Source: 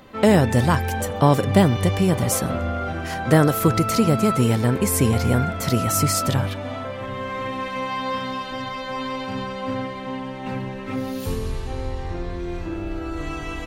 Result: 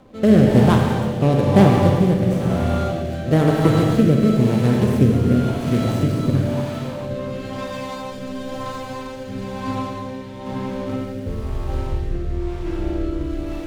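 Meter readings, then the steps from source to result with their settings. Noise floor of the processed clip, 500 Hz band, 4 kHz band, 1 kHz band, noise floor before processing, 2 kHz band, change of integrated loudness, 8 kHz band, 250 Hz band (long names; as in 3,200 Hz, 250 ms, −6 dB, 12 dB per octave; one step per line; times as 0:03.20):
−32 dBFS, +2.5 dB, −3.0 dB, −2.0 dB, −32 dBFS, −3.0 dB, +3.0 dB, −12.5 dB, +4.5 dB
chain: running median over 25 samples
four-comb reverb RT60 3.5 s, combs from 29 ms, DRR 0 dB
rotating-speaker cabinet horn 1 Hz
level +2.5 dB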